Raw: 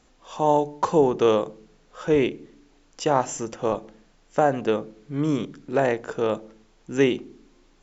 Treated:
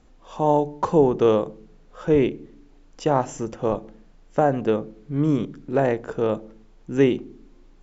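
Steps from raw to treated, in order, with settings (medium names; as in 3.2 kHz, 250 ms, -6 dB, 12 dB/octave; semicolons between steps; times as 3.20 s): tilt EQ -2 dB/octave; trim -1 dB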